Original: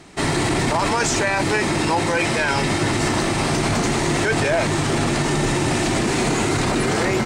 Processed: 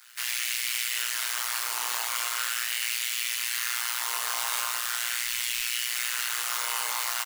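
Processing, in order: spectral contrast lowered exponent 0.1; 3.44–3.99 HPF 600 Hz 12 dB/oct; resonator bank A#2 sus4, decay 0.56 s; on a send at -9.5 dB: reverb RT60 0.35 s, pre-delay 3 ms; on the sum: AM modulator 120 Hz, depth 90%; LFO high-pass sine 0.4 Hz 960–2200 Hz; 5.23–5.65 added noise brown -70 dBFS; in parallel at +2.5 dB: limiter -35 dBFS, peak gain reduction 11 dB; on the sum: outdoor echo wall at 120 m, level -29 dB; gain +6 dB

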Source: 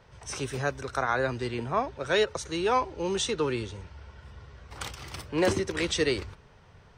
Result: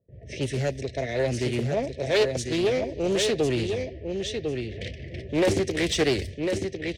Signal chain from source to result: brick-wall FIR band-stop 700–1700 Hz; on a send: feedback echo 1.051 s, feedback 18%, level -6.5 dB; on the sum: gate with hold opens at -49 dBFS; low-pass opened by the level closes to 600 Hz, open at -28 dBFS; HPF 73 Hz 12 dB/oct; in parallel at -3.5 dB: hard clip -30 dBFS, distortion -6 dB; on the sum: low shelf 390 Hz +3 dB; Doppler distortion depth 0.43 ms

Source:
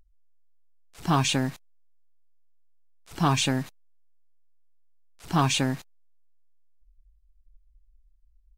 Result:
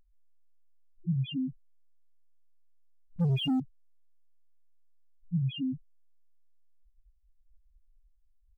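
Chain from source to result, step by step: loudest bins only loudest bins 1; 3.16–3.6 sample leveller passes 2; gain +1.5 dB

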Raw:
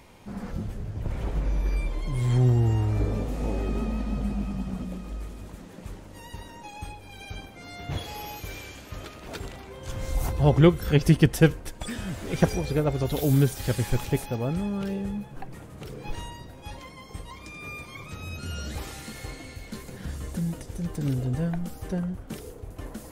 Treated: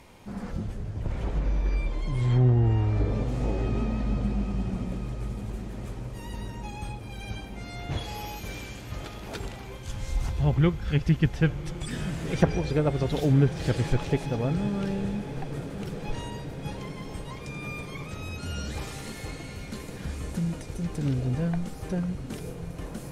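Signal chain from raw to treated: treble ducked by the level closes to 2400 Hz, closed at -16.5 dBFS; 9.77–11.93 bell 520 Hz -10 dB 2.6 oct; diffused feedback echo 1.102 s, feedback 76%, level -13 dB

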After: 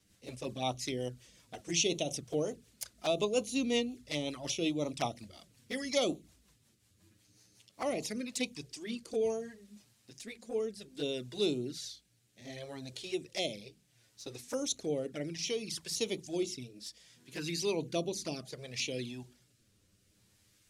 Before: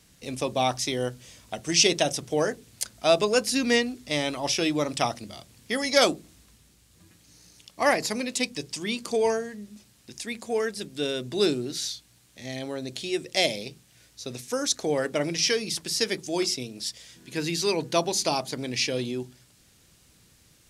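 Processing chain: rotary speaker horn 5.5 Hz, later 0.65 Hz, at 7.62; envelope flanger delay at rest 10.7 ms, full sweep at -25 dBFS; gain -5 dB

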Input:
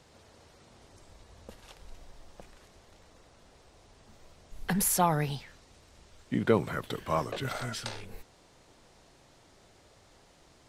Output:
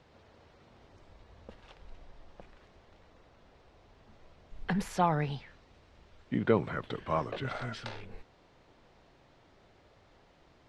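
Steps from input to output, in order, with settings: LPF 3300 Hz 12 dB/oct; gain -1.5 dB

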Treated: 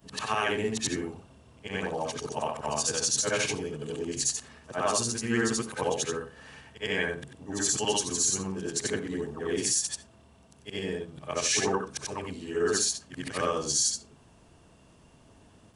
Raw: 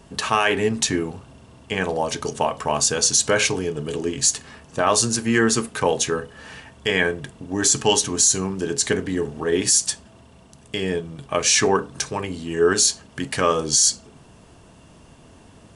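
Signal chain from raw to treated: short-time reversal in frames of 0.188 s; gain -5.5 dB

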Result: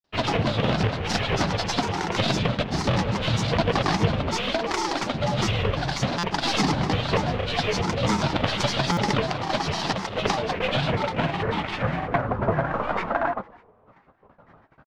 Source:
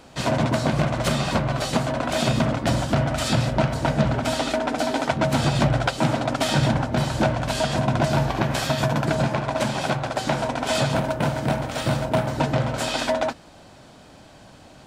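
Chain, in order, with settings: tracing distortion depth 0.23 ms; gate with hold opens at -37 dBFS; in parallel at -6 dB: bit-crush 5-bit; on the sum: low-pass sweep 4100 Hz -> 1400 Hz, 10.41–12.68; on a send at -17 dB: reverb, pre-delay 3 ms; on the sum: grains, pitch spread up and down by 7 st; stuck buffer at 6.18/8.92, samples 256, times 8; gain -5 dB

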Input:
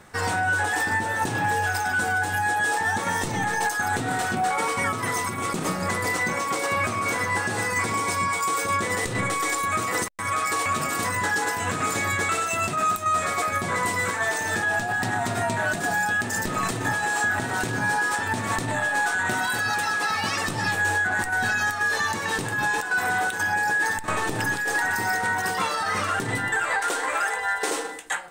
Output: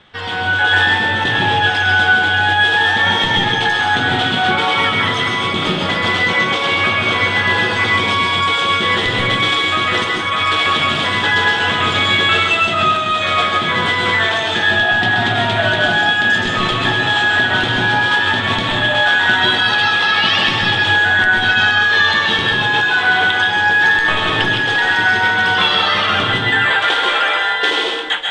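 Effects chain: AGC gain up to 7 dB; 11.33–11.98 added noise white -39 dBFS; synth low-pass 3300 Hz, resonance Q 9; plate-style reverb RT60 0.62 s, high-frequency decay 0.8×, pre-delay 0.12 s, DRR 0.5 dB; gain -2 dB

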